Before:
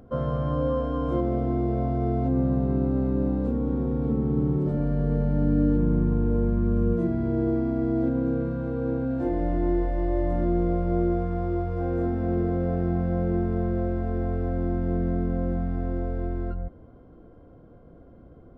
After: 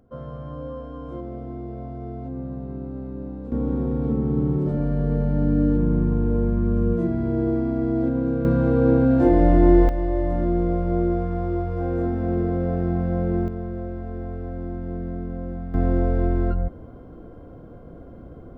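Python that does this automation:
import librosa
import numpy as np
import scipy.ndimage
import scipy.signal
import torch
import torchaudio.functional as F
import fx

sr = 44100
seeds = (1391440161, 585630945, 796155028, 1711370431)

y = fx.gain(x, sr, db=fx.steps((0.0, -8.5), (3.52, 2.0), (8.45, 10.0), (9.89, 2.0), (13.48, -4.5), (15.74, 8.0)))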